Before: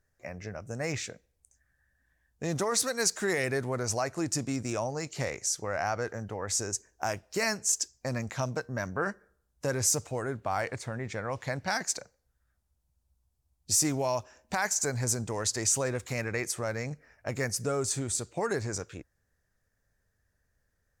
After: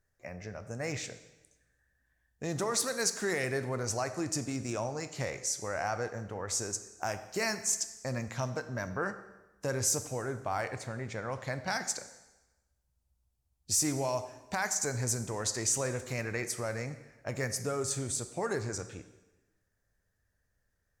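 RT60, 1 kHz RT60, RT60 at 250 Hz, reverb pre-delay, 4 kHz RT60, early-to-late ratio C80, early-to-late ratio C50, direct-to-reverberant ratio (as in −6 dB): 1.1 s, 1.1 s, 1.1 s, 6 ms, 1.0 s, 14.0 dB, 12.0 dB, 10.0 dB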